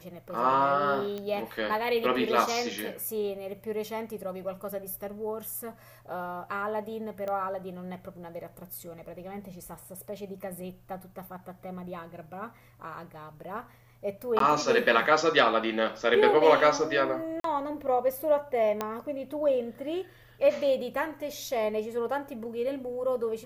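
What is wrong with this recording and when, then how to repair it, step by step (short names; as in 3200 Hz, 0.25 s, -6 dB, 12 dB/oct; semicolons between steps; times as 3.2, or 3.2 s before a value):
1.18 pop -23 dBFS
7.28 pop -23 dBFS
14.39–14.4 gap 13 ms
17.4–17.44 gap 43 ms
18.81 pop -15 dBFS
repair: de-click; interpolate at 14.39, 13 ms; interpolate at 17.4, 43 ms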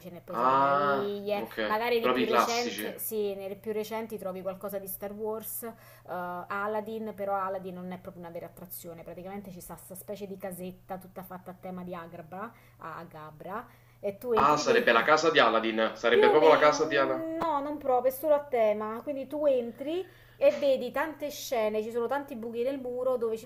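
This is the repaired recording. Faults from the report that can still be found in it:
none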